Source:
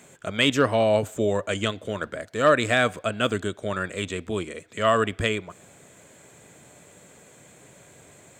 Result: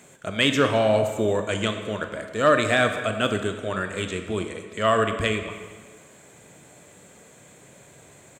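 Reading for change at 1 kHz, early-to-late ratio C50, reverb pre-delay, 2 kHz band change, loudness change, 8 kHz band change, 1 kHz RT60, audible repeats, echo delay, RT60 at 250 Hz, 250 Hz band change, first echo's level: +1.0 dB, 7.5 dB, 21 ms, +1.0 dB, +1.0 dB, +0.5 dB, 1.6 s, 1, 219 ms, 1.4 s, +1.0 dB, -20.0 dB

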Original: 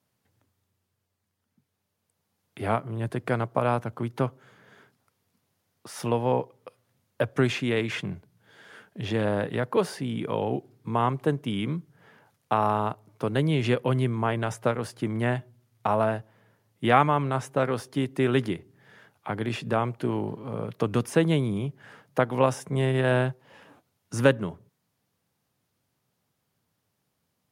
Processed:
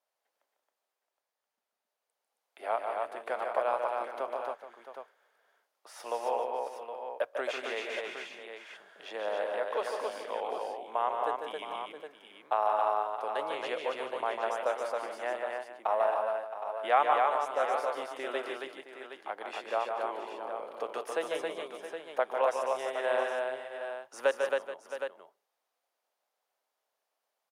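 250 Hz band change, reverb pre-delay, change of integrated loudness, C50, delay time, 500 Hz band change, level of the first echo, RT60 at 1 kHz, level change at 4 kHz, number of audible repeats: -21.0 dB, no reverb, -6.0 dB, no reverb, 148 ms, -4.0 dB, -6.0 dB, no reverb, -6.0 dB, 6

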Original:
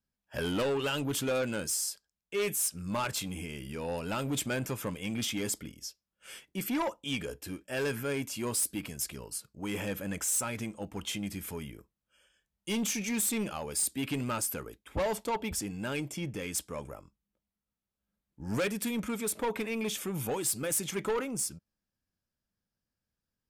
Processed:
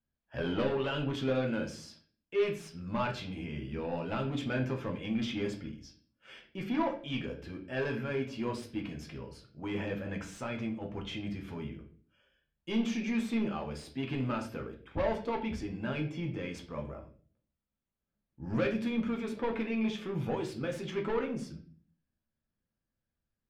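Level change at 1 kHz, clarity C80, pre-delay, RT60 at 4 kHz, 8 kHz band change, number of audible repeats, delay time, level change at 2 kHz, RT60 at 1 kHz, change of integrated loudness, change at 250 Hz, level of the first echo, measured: -1.5 dB, 14.5 dB, 6 ms, 0.40 s, -23.0 dB, no echo, no echo, -2.0 dB, 0.35 s, -2.0 dB, +1.5 dB, no echo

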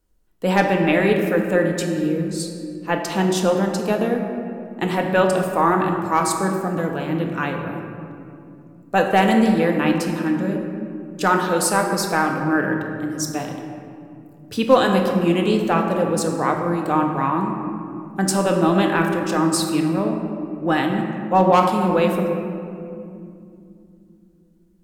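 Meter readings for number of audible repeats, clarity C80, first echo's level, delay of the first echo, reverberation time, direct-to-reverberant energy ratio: no echo, 5.5 dB, no echo, no echo, 2.6 s, 2.0 dB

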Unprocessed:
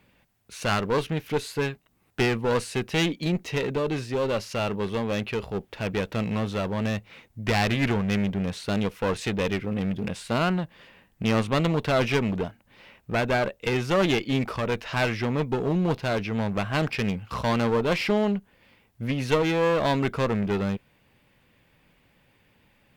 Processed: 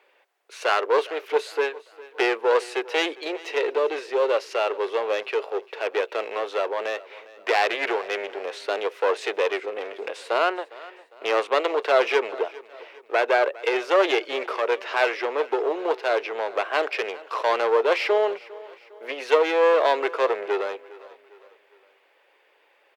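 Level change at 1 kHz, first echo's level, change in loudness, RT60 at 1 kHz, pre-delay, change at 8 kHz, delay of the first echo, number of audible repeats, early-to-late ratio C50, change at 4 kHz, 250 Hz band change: +5.0 dB, -20.0 dB, +2.0 dB, no reverb, no reverb, no reading, 405 ms, 3, no reverb, +1.0 dB, -10.0 dB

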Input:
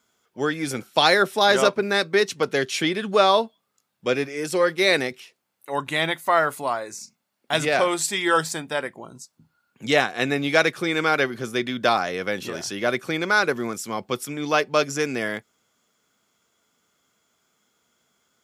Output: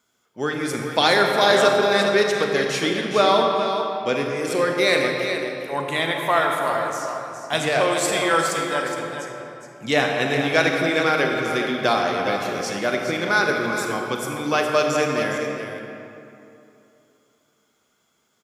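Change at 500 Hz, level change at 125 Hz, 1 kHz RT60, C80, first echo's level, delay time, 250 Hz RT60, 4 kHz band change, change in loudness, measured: +2.5 dB, +2.5 dB, 2.9 s, 2.0 dB, -8.0 dB, 414 ms, 3.0 s, +1.0 dB, +1.5 dB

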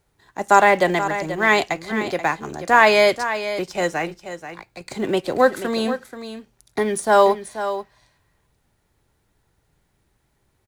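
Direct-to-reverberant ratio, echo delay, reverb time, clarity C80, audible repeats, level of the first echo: no reverb, 483 ms, no reverb, no reverb, 1, -11.0 dB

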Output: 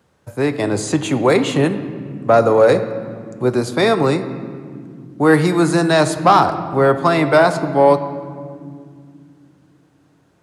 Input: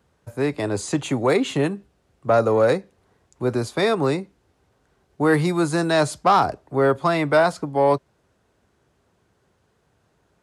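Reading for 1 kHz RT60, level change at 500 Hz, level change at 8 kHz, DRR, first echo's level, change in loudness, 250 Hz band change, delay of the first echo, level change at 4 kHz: 1.9 s, +5.5 dB, +5.0 dB, 9.5 dB, no echo, +5.5 dB, +6.0 dB, no echo, +5.0 dB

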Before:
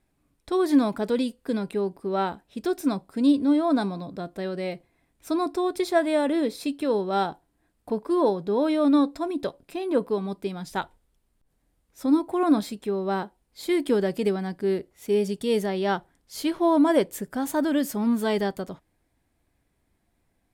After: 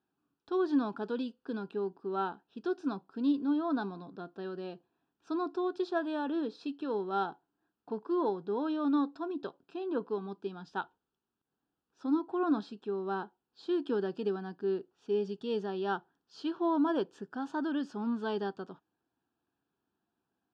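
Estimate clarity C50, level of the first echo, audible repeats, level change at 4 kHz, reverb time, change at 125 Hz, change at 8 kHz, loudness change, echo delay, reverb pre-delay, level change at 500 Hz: no reverb, no echo, no echo, -11.5 dB, no reverb, -11.5 dB, under -25 dB, -9.0 dB, no echo, no reverb, -9.0 dB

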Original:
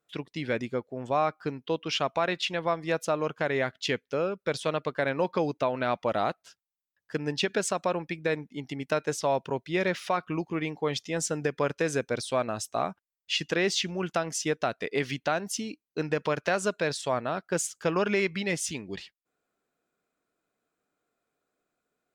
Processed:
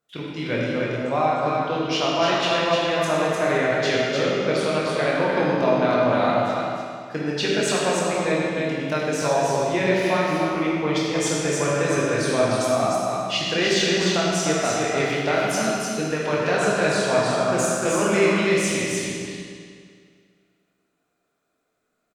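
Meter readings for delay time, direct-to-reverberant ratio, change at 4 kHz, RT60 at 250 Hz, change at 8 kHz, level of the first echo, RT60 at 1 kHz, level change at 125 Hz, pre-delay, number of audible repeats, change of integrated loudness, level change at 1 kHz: 303 ms, -7.0 dB, +8.0 dB, 2.1 s, +7.5 dB, -3.5 dB, 2.1 s, +8.0 dB, 16 ms, 1, +8.0 dB, +7.5 dB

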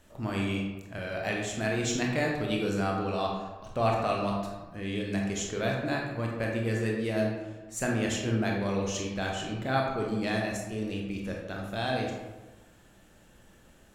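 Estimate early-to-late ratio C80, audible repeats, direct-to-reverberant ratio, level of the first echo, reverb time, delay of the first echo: 4.5 dB, no echo, -1.0 dB, no echo, 1.2 s, no echo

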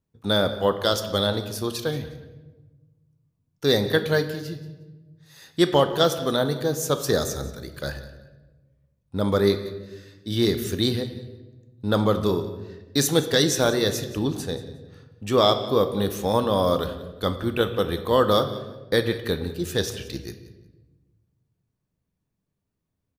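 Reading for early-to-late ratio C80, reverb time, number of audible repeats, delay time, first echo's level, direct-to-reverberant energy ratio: 12.0 dB, 1.2 s, 2, 180 ms, -18.0 dB, 8.0 dB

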